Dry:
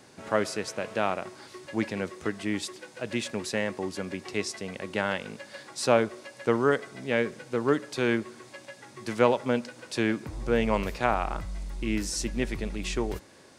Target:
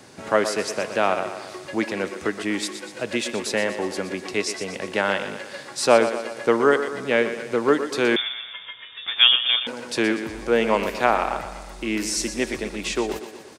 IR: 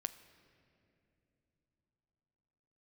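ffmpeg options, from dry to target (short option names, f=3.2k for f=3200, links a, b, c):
-filter_complex "[0:a]acrossover=split=230[a][b];[a]acompressor=threshold=-48dB:ratio=6[c];[b]aecho=1:1:121|242|363|484|605|726:0.299|0.164|0.0903|0.0497|0.0273|0.015[d];[c][d]amix=inputs=2:normalize=0,asettb=1/sr,asplit=3[e][f][g];[e]atrim=end=8.164[h];[f]atrim=start=8.16:end=9.67,asetpts=PTS-STARTPTS,afade=t=in:d=0.004:c=qsin,afade=t=out:st=1.506:d=0.004:c=qsin,lowpass=f=3.2k:t=q:w=0.5098,lowpass=f=3.2k:t=q:w=0.6013,lowpass=f=3.2k:t=q:w=0.9,lowpass=f=3.2k:t=q:w=2.563,afreqshift=-3800[i];[g]atrim=start=9.666[j];[h][i]acrossfade=d=0.004:c1=hsin:c2=qsin[k];[k][j]acrossfade=d=0.004:c1=qsin:c2=hsin,volume=6.5dB"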